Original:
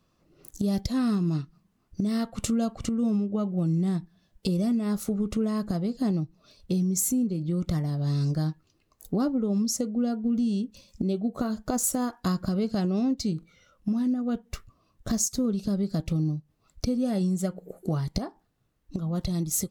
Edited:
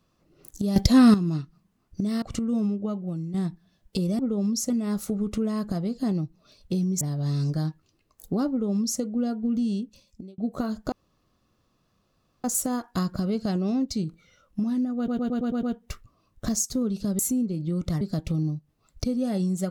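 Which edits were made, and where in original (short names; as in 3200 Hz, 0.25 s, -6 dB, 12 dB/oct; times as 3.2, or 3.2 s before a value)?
0.76–1.14 gain +10.5 dB
2.22–2.72 cut
3.24–3.84 fade out, to -10.5 dB
7–7.82 move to 15.82
9.31–9.82 copy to 4.69
10.52–11.19 fade out
11.73 insert room tone 1.52 s
14.26 stutter 0.11 s, 7 plays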